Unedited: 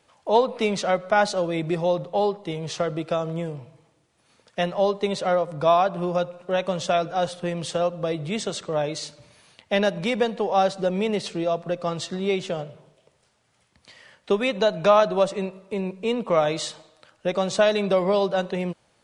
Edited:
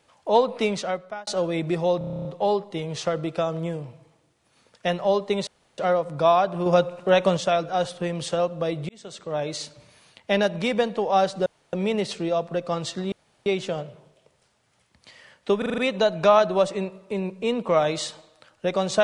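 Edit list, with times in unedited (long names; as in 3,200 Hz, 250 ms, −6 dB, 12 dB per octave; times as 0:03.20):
0:00.63–0:01.27: fade out linear
0:01.98: stutter 0.03 s, 10 plays
0:05.20: splice in room tone 0.31 s
0:06.08–0:06.79: clip gain +5.5 dB
0:08.31–0:08.97: fade in
0:10.88: splice in room tone 0.27 s
0:12.27: splice in room tone 0.34 s
0:14.39: stutter 0.04 s, 6 plays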